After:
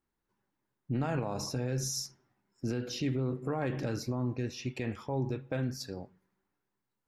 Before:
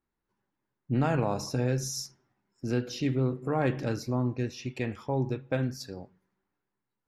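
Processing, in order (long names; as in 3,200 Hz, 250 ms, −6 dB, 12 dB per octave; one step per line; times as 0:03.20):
brickwall limiter −23.5 dBFS, peak gain reduction 8 dB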